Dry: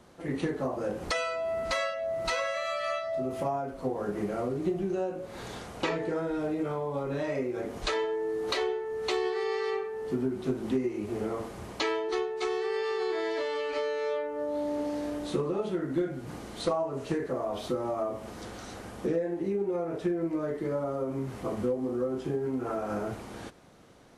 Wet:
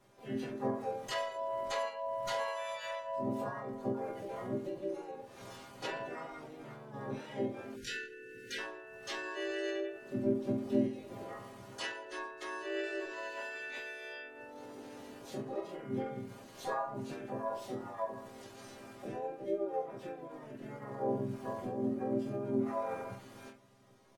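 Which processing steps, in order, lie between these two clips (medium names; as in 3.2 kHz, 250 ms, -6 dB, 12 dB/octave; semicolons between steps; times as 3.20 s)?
inharmonic resonator 130 Hz, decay 0.44 s, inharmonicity 0.002; harmony voices -3 st -4 dB, +7 st -2 dB; spectral selection erased 7.76–8.59 s, 530–1400 Hz; trim +1 dB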